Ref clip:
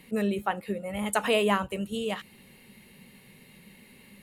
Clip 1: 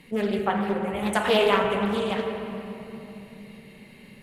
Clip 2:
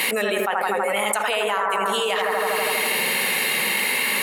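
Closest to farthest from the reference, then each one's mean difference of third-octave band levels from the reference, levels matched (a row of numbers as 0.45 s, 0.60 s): 1, 2; 7.0 dB, 15.0 dB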